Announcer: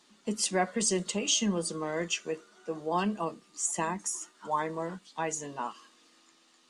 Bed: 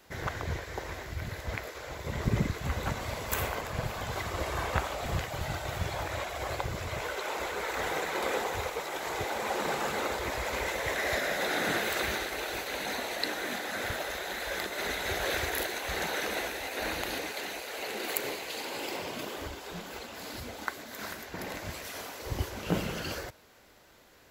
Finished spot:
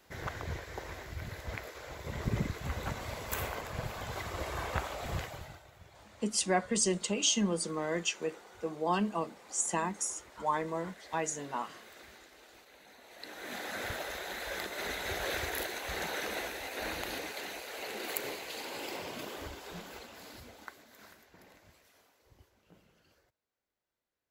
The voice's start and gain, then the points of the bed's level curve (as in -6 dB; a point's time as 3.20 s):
5.95 s, -1.0 dB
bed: 5.25 s -4.5 dB
5.71 s -23 dB
12.98 s -23 dB
13.61 s -4 dB
19.79 s -4 dB
22.73 s -32.5 dB